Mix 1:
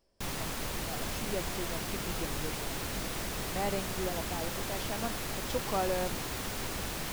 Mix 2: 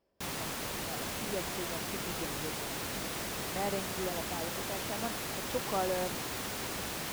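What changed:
speech: add high-frequency loss of the air 250 metres
master: add high-pass filter 140 Hz 6 dB per octave

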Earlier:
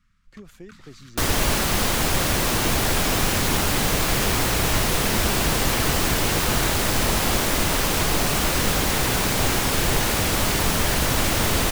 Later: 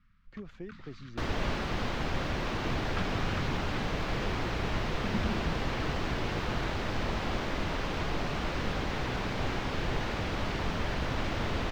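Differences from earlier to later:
second sound −9.0 dB
master: add high-frequency loss of the air 220 metres

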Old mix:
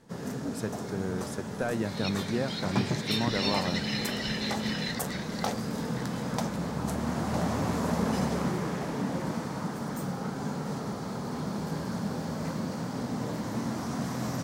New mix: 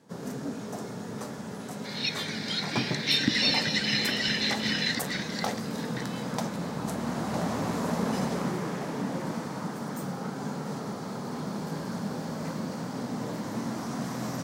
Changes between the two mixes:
speech: muted
second sound +7.0 dB
master: add high-pass filter 130 Hz 12 dB per octave

